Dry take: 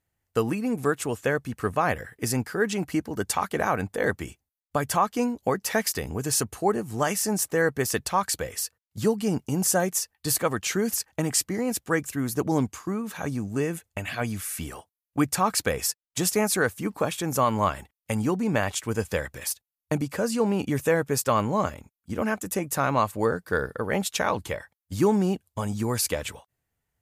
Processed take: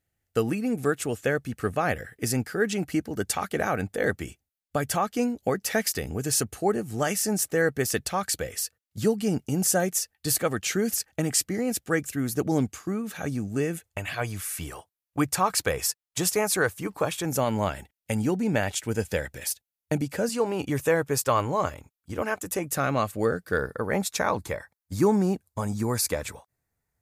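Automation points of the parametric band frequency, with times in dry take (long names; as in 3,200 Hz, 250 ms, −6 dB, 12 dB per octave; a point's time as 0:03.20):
parametric band −12 dB 0.3 octaves
1,000 Hz
from 0:13.83 230 Hz
from 0:17.25 1,100 Hz
from 0:20.29 210 Hz
from 0:22.64 950 Hz
from 0:23.58 3,000 Hz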